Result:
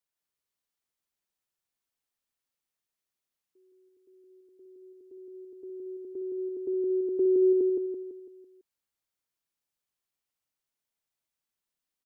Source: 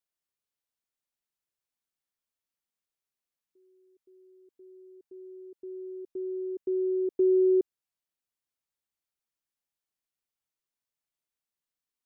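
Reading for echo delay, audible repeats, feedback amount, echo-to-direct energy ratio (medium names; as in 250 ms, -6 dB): 167 ms, 5, 47%, -2.0 dB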